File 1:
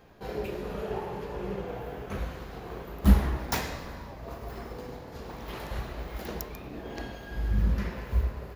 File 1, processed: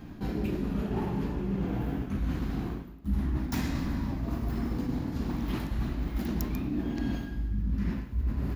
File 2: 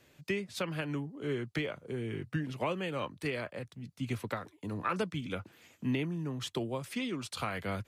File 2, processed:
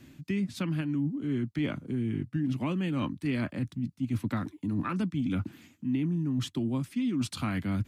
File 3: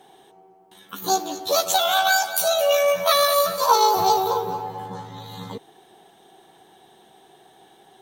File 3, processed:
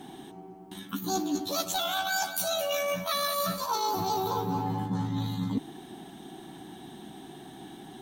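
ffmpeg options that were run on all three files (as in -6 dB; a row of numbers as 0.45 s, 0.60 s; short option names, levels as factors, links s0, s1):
-af "lowshelf=f=360:t=q:w=3:g=8.5,areverse,acompressor=threshold=0.0282:ratio=12,areverse,volume=1.68"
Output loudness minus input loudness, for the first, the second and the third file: +0.5 LU, +5.0 LU, -10.0 LU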